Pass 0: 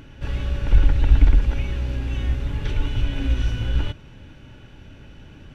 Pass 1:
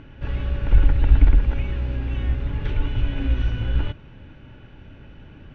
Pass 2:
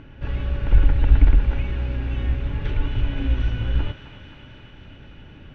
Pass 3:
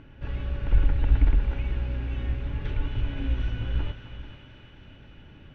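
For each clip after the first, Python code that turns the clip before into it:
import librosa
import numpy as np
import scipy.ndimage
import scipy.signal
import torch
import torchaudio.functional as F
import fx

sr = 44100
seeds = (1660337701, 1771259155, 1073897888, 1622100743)

y1 = scipy.signal.sosfilt(scipy.signal.butter(2, 2800.0, 'lowpass', fs=sr, output='sos'), x)
y2 = fx.echo_thinned(y1, sr, ms=264, feedback_pct=82, hz=640.0, wet_db=-10)
y3 = y2 + 10.0 ** (-13.5 / 20.0) * np.pad(y2, (int(437 * sr / 1000.0), 0))[:len(y2)]
y3 = y3 * 10.0 ** (-5.5 / 20.0)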